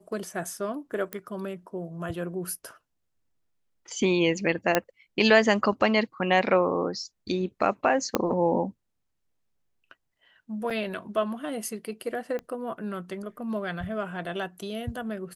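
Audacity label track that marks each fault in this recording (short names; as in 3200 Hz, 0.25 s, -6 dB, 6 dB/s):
1.130000	1.130000	pop -16 dBFS
4.750000	4.750000	pop -6 dBFS
8.150000	8.150000	pop -7 dBFS
10.700000	10.710000	gap 5.8 ms
12.390000	12.390000	pop -23 dBFS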